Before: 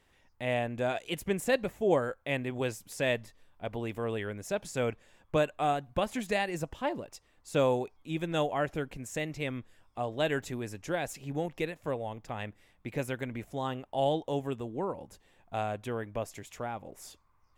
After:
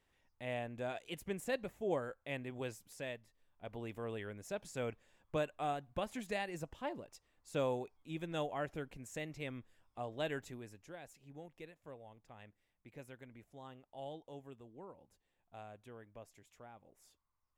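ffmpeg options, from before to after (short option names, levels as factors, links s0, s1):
-af "volume=0.944,afade=t=out:st=2.81:d=0.4:silence=0.375837,afade=t=in:st=3.21:d=0.62:silence=0.334965,afade=t=out:st=10.27:d=0.65:silence=0.334965"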